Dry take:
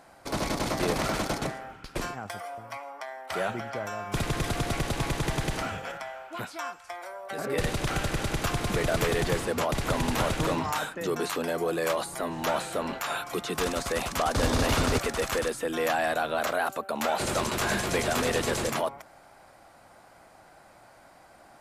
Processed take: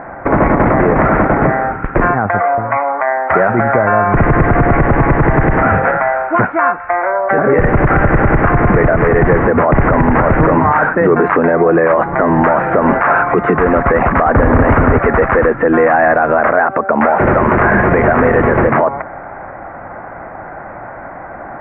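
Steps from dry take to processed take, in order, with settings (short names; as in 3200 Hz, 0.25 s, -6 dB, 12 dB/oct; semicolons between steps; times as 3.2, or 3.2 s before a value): steep low-pass 2000 Hz 48 dB/oct; compressor 3:1, threshold -31 dBFS, peak gain reduction 8 dB; maximiser +26.5 dB; gain -1 dB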